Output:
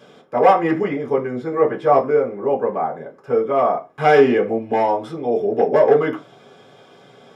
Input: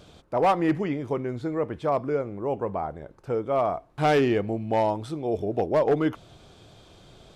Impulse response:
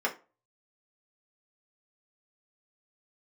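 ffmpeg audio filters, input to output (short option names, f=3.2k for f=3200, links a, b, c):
-filter_complex "[0:a]asettb=1/sr,asplit=3[a][b][c];[a]atrim=end=1.504[d];[b]atrim=start=1.5:end=2,asetpts=PTS-STARTPTS,afade=t=in:d=0.004:c=qsin,afade=t=out:st=0.496:d=0.004:c=qsin,asplit=2[e][f];[f]adelay=15,volume=-2.5dB[g];[e][g]amix=inputs=2:normalize=0,atrim=end_sample=22050[h];[c]atrim=start=1.996[i];[d][h]acrossfade=d=0.004:c1=hsin:c2=qsin[j];[j][i]acrossfade=d=0.004:c1=qsin:c2=hsin[k];[1:a]atrim=start_sample=2205,atrim=end_sample=6174[l];[k][l]afir=irnorm=-1:irlink=0,volume=-1.5dB"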